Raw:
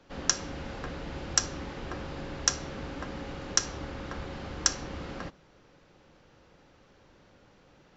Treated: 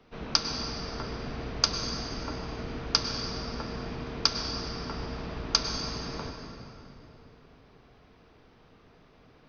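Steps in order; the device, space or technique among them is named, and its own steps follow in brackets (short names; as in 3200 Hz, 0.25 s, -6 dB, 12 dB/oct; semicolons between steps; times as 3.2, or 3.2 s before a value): slowed and reverbed (varispeed -16%; reverb RT60 3.1 s, pre-delay 93 ms, DRR 4 dB)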